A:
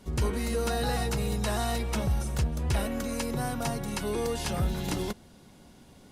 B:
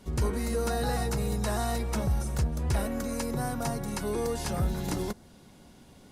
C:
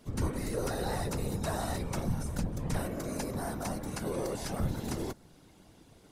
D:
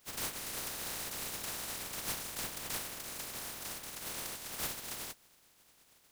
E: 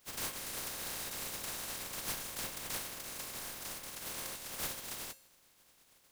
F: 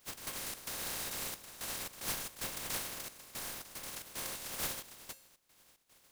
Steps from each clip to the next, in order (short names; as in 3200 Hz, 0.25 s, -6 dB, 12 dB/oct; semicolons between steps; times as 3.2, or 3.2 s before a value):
dynamic EQ 3000 Hz, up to -7 dB, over -54 dBFS, Q 1.6
whisperiser; gain -4 dB
spectral contrast lowered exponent 0.14; gain -7.5 dB
resonator 540 Hz, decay 0.55 s, mix 70%; gain +9 dB
step gate "x.xx.xxxxx..x" 112 bpm -12 dB; gain +1.5 dB